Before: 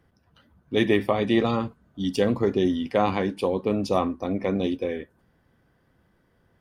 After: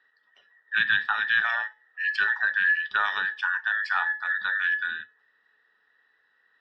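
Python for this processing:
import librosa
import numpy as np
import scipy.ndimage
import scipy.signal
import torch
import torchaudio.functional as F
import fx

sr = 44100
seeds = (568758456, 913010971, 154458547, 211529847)

y = fx.band_invert(x, sr, width_hz=2000)
y = scipy.signal.sosfilt(scipy.signal.butter(4, 4000.0, 'lowpass', fs=sr, output='sos'), y)
y = fx.tilt_eq(y, sr, slope=3.5)
y = fx.comb_fb(y, sr, f0_hz=430.0, decay_s=0.37, harmonics='all', damping=0.0, mix_pct=60)
y = y * 10.0 ** (2.5 / 20.0)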